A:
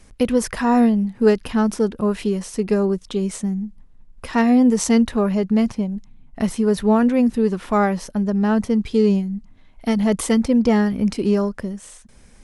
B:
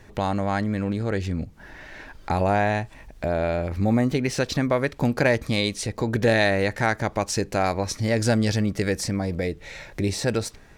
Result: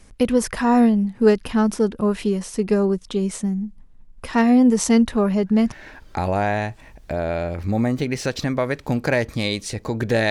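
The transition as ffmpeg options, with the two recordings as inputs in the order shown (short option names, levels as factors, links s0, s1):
-filter_complex "[1:a]asplit=2[s0][s1];[0:a]apad=whole_dur=10.3,atrim=end=10.3,atrim=end=5.722[s2];[s1]atrim=start=1.848:end=6.43[s3];[s0]atrim=start=1.43:end=1.85,asetpts=PTS-STARTPTS,volume=0.211,afade=t=in:d=0.004:c=hsin,afade=t=out:st=0.416:d=0.004:c=hsin,adelay=5300[s4];[s2][s3]acrossfade=d=0.004:c1=hsin:c2=hsin[s5];[s5][s4]amix=inputs=2:normalize=0"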